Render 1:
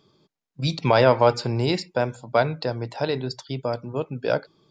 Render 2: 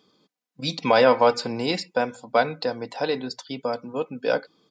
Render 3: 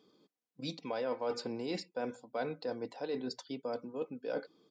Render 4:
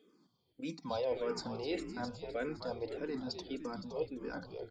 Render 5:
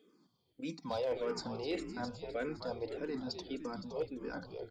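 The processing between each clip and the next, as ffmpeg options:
ffmpeg -i in.wav -af "highpass=frequency=230:poles=1,aecho=1:1:4:0.57" out.wav
ffmpeg -i in.wav -af "equalizer=frequency=360:width_type=o:width=1.4:gain=8,areverse,acompressor=threshold=-27dB:ratio=4,areverse,volume=-8.5dB" out.wav
ffmpeg -i in.wav -filter_complex "[0:a]asplit=8[link_01][link_02][link_03][link_04][link_05][link_06][link_07][link_08];[link_02]adelay=257,afreqshift=-72,volume=-8.5dB[link_09];[link_03]adelay=514,afreqshift=-144,volume=-13.4dB[link_10];[link_04]adelay=771,afreqshift=-216,volume=-18.3dB[link_11];[link_05]adelay=1028,afreqshift=-288,volume=-23.1dB[link_12];[link_06]adelay=1285,afreqshift=-360,volume=-28dB[link_13];[link_07]adelay=1542,afreqshift=-432,volume=-32.9dB[link_14];[link_08]adelay=1799,afreqshift=-504,volume=-37.8dB[link_15];[link_01][link_09][link_10][link_11][link_12][link_13][link_14][link_15]amix=inputs=8:normalize=0,asplit=2[link_16][link_17];[link_17]afreqshift=-1.7[link_18];[link_16][link_18]amix=inputs=2:normalize=1,volume=2dB" out.wav
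ffmpeg -i in.wav -af "volume=28.5dB,asoftclip=hard,volume=-28.5dB" out.wav

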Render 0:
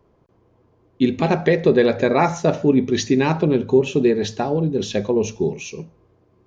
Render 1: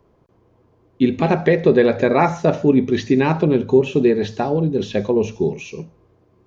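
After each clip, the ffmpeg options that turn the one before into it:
ffmpeg -i in.wav -filter_complex "[0:a]acrossover=split=3400[link_01][link_02];[link_02]acompressor=threshold=-44dB:ratio=4:attack=1:release=60[link_03];[link_01][link_03]amix=inputs=2:normalize=0,volume=1.5dB" out.wav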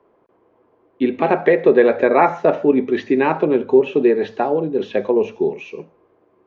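ffmpeg -i in.wav -filter_complex "[0:a]acrossover=split=270 2900:gain=0.1 1 0.1[link_01][link_02][link_03];[link_01][link_02][link_03]amix=inputs=3:normalize=0,volume=3dB" out.wav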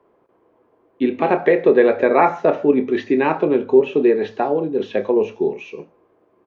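ffmpeg -i in.wav -filter_complex "[0:a]asplit=2[link_01][link_02];[link_02]adelay=28,volume=-12dB[link_03];[link_01][link_03]amix=inputs=2:normalize=0,volume=-1dB" out.wav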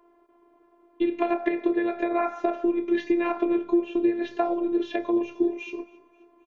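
ffmpeg -i in.wav -af "acompressor=threshold=-20dB:ratio=6,afftfilt=real='hypot(re,im)*cos(PI*b)':imag='0':win_size=512:overlap=0.75,aecho=1:1:265|530|795:0.0708|0.0326|0.015,volume=2.5dB" out.wav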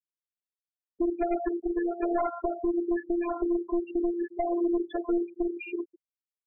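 ffmpeg -i in.wav -af "aeval=exprs='clip(val(0),-1,0.0668)':channel_layout=same,alimiter=limit=-22dB:level=0:latency=1:release=453,afftfilt=real='re*gte(hypot(re,im),0.0447)':imag='im*gte(hypot(re,im),0.0447)':win_size=1024:overlap=0.75,volume=3.5dB" out.wav

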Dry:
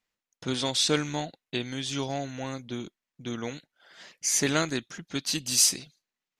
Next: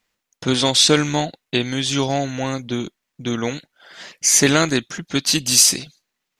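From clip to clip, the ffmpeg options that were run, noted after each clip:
ffmpeg -i in.wav -af "alimiter=level_in=12dB:limit=-1dB:release=50:level=0:latency=1,volume=-1dB" out.wav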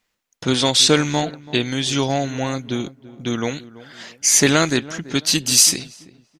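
ffmpeg -i in.wav -filter_complex "[0:a]asplit=2[link_01][link_02];[link_02]adelay=334,lowpass=frequency=1200:poles=1,volume=-17.5dB,asplit=2[link_03][link_04];[link_04]adelay=334,lowpass=frequency=1200:poles=1,volume=0.37,asplit=2[link_05][link_06];[link_06]adelay=334,lowpass=frequency=1200:poles=1,volume=0.37[link_07];[link_01][link_03][link_05][link_07]amix=inputs=4:normalize=0" out.wav

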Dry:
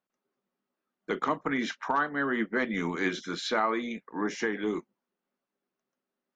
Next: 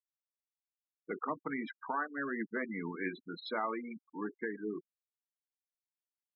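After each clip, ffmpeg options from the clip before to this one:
ffmpeg -i in.wav -af "afftfilt=real='re*gte(hypot(re,im),0.0501)':imag='im*gte(hypot(re,im),0.0501)':win_size=1024:overlap=0.75,volume=-8dB" out.wav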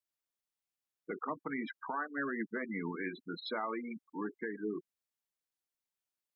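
ffmpeg -i in.wav -af "alimiter=level_in=5.5dB:limit=-24dB:level=0:latency=1:release=168,volume=-5.5dB,volume=2dB" out.wav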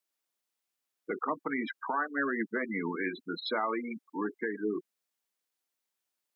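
ffmpeg -i in.wav -af "highpass=210,volume=6dB" out.wav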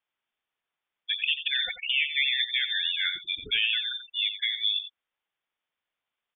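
ffmpeg -i in.wav -af "lowpass=frequency=3200:width_type=q:width=0.5098,lowpass=frequency=3200:width_type=q:width=0.6013,lowpass=frequency=3200:width_type=q:width=0.9,lowpass=frequency=3200:width_type=q:width=2.563,afreqshift=-3800,aecho=1:1:88:0.282,volume=5dB" out.wav

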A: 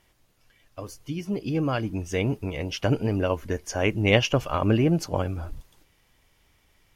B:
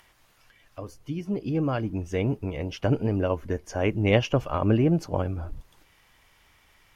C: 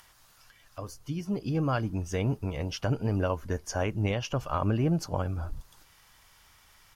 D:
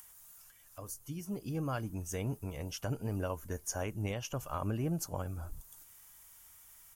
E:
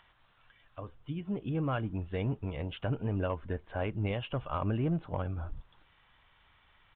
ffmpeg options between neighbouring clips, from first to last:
ffmpeg -i in.wav -filter_complex "[0:a]highshelf=frequency=2100:gain=-9.5,acrossover=split=860[link_01][link_02];[link_02]acompressor=mode=upward:threshold=-50dB:ratio=2.5[link_03];[link_01][link_03]amix=inputs=2:normalize=0" out.wav
ffmpeg -i in.wav -af "alimiter=limit=-15.5dB:level=0:latency=1:release=263,firequalizer=gain_entry='entry(140,0);entry(320,-5);entry(890,1);entry(1400,3);entry(2100,-3);entry(4700,6)':delay=0.05:min_phase=1" out.wav
ffmpeg -i in.wav -af "aexciter=amount=6.7:drive=3.7:freq=6600,volume=-8dB" out.wav
ffmpeg -i in.wav -filter_complex "[0:a]asplit=2[link_01][link_02];[link_02]asoftclip=type=hard:threshold=-31dB,volume=-4dB[link_03];[link_01][link_03]amix=inputs=2:normalize=0,aresample=8000,aresample=44100" out.wav

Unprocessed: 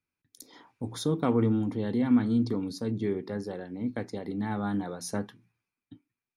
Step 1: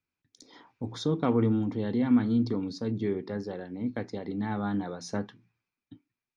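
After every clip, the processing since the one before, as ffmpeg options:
ffmpeg -i in.wav -af "lowpass=frequency=6200:width=0.5412,lowpass=frequency=6200:width=1.3066" out.wav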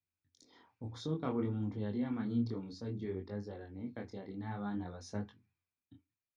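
ffmpeg -i in.wav -af "equalizer=frequency=89:width=5:gain=14,flanger=delay=19:depth=7.5:speed=0.57,volume=-7dB" out.wav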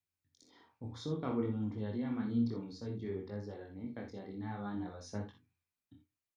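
ffmpeg -i in.wav -af "aecho=1:1:47|60:0.282|0.376,volume=-1dB" out.wav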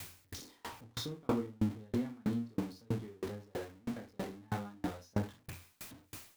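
ffmpeg -i in.wav -af "aeval=exprs='val(0)+0.5*0.00794*sgn(val(0))':channel_layout=same,aeval=exprs='val(0)*pow(10,-35*if(lt(mod(3.1*n/s,1),2*abs(3.1)/1000),1-mod(3.1*n/s,1)/(2*abs(3.1)/1000),(mod(3.1*n/s,1)-2*abs(3.1)/1000)/(1-2*abs(3.1)/1000))/20)':channel_layout=same,volume=7.5dB" out.wav

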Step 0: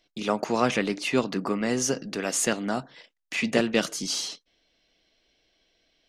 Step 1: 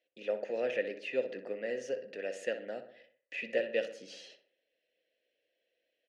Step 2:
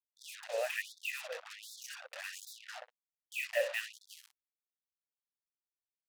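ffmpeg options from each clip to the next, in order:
ffmpeg -i in.wav -filter_complex "[0:a]asplit=3[link_01][link_02][link_03];[link_01]bandpass=frequency=530:width_type=q:width=8,volume=0dB[link_04];[link_02]bandpass=frequency=1840:width_type=q:width=8,volume=-6dB[link_05];[link_03]bandpass=frequency=2480:width_type=q:width=8,volume=-9dB[link_06];[link_04][link_05][link_06]amix=inputs=3:normalize=0,asplit=2[link_07][link_08];[link_08]adelay=62,lowpass=frequency=2400:poles=1,volume=-9.5dB,asplit=2[link_09][link_10];[link_10]adelay=62,lowpass=frequency=2400:poles=1,volume=0.52,asplit=2[link_11][link_12];[link_12]adelay=62,lowpass=frequency=2400:poles=1,volume=0.52,asplit=2[link_13][link_14];[link_14]adelay=62,lowpass=frequency=2400:poles=1,volume=0.52,asplit=2[link_15][link_16];[link_16]adelay=62,lowpass=frequency=2400:poles=1,volume=0.52,asplit=2[link_17][link_18];[link_18]adelay=62,lowpass=frequency=2400:poles=1,volume=0.52[link_19];[link_09][link_11][link_13][link_15][link_17][link_19]amix=inputs=6:normalize=0[link_20];[link_07][link_20]amix=inputs=2:normalize=0" out.wav
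ffmpeg -i in.wav -af "acrusher=bits=6:mix=0:aa=0.5,afftfilt=real='re*gte(b*sr/1024,460*pow(3500/460,0.5+0.5*sin(2*PI*1.3*pts/sr)))':imag='im*gte(b*sr/1024,460*pow(3500/460,0.5+0.5*sin(2*PI*1.3*pts/sr)))':win_size=1024:overlap=0.75,volume=2.5dB" out.wav

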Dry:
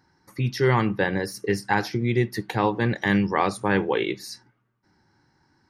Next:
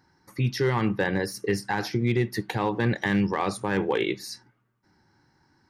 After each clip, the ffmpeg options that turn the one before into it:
ffmpeg -i in.wav -af "alimiter=limit=-13.5dB:level=0:latency=1:release=45,asoftclip=type=hard:threshold=-15dB" out.wav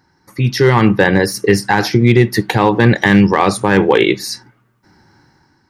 ffmpeg -i in.wav -af "dynaudnorm=framelen=140:gausssize=7:maxgain=8dB,volume=6dB" out.wav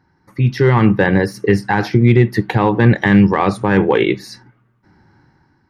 ffmpeg -i in.wav -af "bass=frequency=250:gain=4,treble=frequency=4000:gain=-12,volume=-3dB" out.wav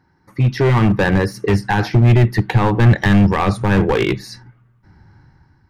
ffmpeg -i in.wav -af "asoftclip=type=hard:threshold=-9.5dB,asubboost=boost=4:cutoff=130" out.wav

